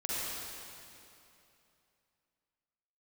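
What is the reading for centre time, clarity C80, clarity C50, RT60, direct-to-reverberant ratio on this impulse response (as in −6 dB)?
204 ms, −4.0 dB, −6.5 dB, 2.8 s, −8.0 dB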